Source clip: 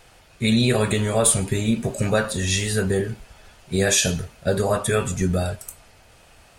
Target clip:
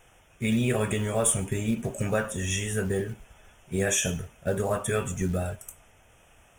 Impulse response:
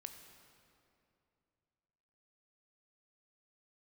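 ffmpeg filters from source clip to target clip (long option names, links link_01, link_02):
-af "asuperstop=centerf=4400:order=8:qfactor=2.2,acrusher=bits=7:mode=log:mix=0:aa=0.000001,volume=-6dB"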